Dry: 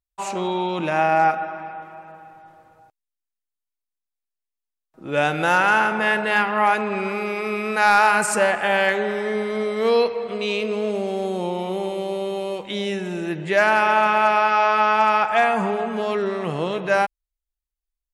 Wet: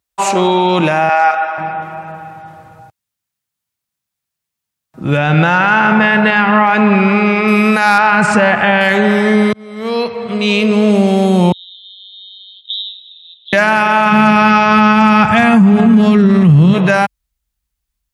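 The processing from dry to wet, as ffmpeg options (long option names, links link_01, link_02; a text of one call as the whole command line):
ffmpeg -i in.wav -filter_complex "[0:a]asettb=1/sr,asplit=3[link_01][link_02][link_03];[link_01]atrim=end=1.094[link_04];[link_02]atrim=start=1.09:end=1.58,asetpts=PTS-STARTPTS,afade=type=in:duration=0.004:curve=qsin,afade=type=out:start_time=0.486:duration=0.004:curve=qsin,highpass=730,lowpass=7300[link_05];[link_03]atrim=start=1.576[link_06];[link_04][link_05]acrossfade=duration=0.004:curve1=hsin:curve2=qsin[link_07];[link_07][link_06]acrossfade=duration=0.004:curve1=qsin:curve2=hsin,asettb=1/sr,asplit=3[link_08][link_09][link_10];[link_08]atrim=end=5.174[link_11];[link_09]atrim=start=5.17:end=7.48,asetpts=PTS-STARTPTS,afade=type=in:duration=0.004:curve=qsin,afade=type=out:start_time=2.306:duration=0.004:curve=qsin,lowpass=3900[link_12];[link_10]atrim=start=7.476[link_13];[link_11][link_12]acrossfade=duration=0.004:curve1=hsin:curve2=qsin[link_14];[link_14][link_13]acrossfade=duration=0.004:curve1=qsin:curve2=hsin,asettb=1/sr,asplit=3[link_15][link_16][link_17];[link_15]atrim=end=7.984[link_18];[link_16]atrim=start=7.98:end=8.81,asetpts=PTS-STARTPTS,afade=type=in:duration=0.004:curve=qsin,afade=type=out:start_time=0.826:duration=0.004:curve=qsin,lowpass=3400[link_19];[link_17]atrim=start=8.806[link_20];[link_18][link_19]acrossfade=duration=0.004:curve1=hsin:curve2=qsin[link_21];[link_21][link_20]acrossfade=duration=0.004:curve1=qsin:curve2=hsin,asettb=1/sr,asplit=3[link_22][link_23][link_24];[link_22]atrim=end=11.524[link_25];[link_23]atrim=start=11.52:end=13.53,asetpts=PTS-STARTPTS,afade=type=in:duration=0.004:curve=qsin,afade=type=out:start_time=2.006:duration=0.004:curve=qsin,asuperpass=centerf=3600:order=8:qfactor=5[link_26];[link_24]atrim=start=13.526[link_27];[link_25][link_26]acrossfade=duration=0.004:curve1=hsin:curve2=qsin[link_28];[link_28][link_27]acrossfade=duration=0.004:curve1=qsin:curve2=hsin,asplit=3[link_29][link_30][link_31];[link_29]afade=type=out:start_time=14.11:duration=0.02[link_32];[link_30]asubboost=boost=5.5:cutoff=250,afade=type=in:start_time=14.11:duration=0.02,afade=type=out:start_time=16.73:duration=0.02[link_33];[link_31]afade=type=in:start_time=16.73:duration=0.02[link_34];[link_32][link_33][link_34]amix=inputs=3:normalize=0,asplit=2[link_35][link_36];[link_35]atrim=end=9.53,asetpts=PTS-STARTPTS,afade=type=out:start_time=9.526:duration=0.004:curve=hsin[link_37];[link_36]atrim=start=9.53,asetpts=PTS-STARTPTS,afade=type=in:duration=1.37[link_38];[link_37][link_38]concat=n=2:v=0:a=1,highpass=110,asubboost=boost=8:cutoff=140,alimiter=level_in=15dB:limit=-1dB:release=50:level=0:latency=1,volume=-1dB" out.wav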